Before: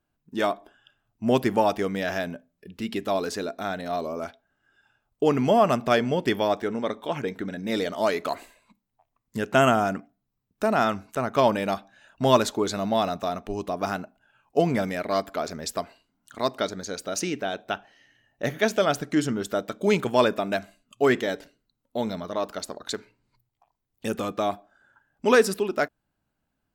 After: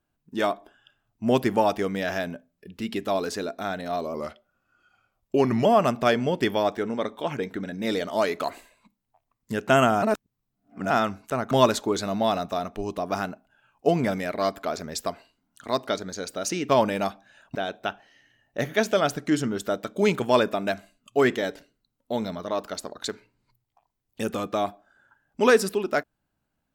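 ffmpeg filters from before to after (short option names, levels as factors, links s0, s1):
-filter_complex "[0:a]asplit=8[s0][s1][s2][s3][s4][s5][s6][s7];[s0]atrim=end=4.144[s8];[s1]atrim=start=4.14:end=5.5,asetpts=PTS-STARTPTS,asetrate=39690,aresample=44100[s9];[s2]atrim=start=5.496:end=9.872[s10];[s3]atrim=start=9.868:end=10.752,asetpts=PTS-STARTPTS,areverse[s11];[s4]atrim=start=10.748:end=11.362[s12];[s5]atrim=start=12.218:end=17.402[s13];[s6]atrim=start=11.358:end=12.222[s14];[s7]atrim=start=17.398[s15];[s8][s9]acrossfade=d=0.004:c1=hsin:c2=hsin[s16];[s16][s10]acrossfade=d=0.004:c1=hsin:c2=hsin[s17];[s17][s11]acrossfade=d=0.004:c1=hsin:c2=hsin[s18];[s18][s12]acrossfade=d=0.004:c1=hsin:c2=hsin[s19];[s19][s13]acrossfade=d=0.004:c1=hsin:c2=hsin[s20];[s20][s14]acrossfade=d=0.004:c1=hsin:c2=hsin[s21];[s21][s15]acrossfade=d=0.004:c1=hsin:c2=hsin"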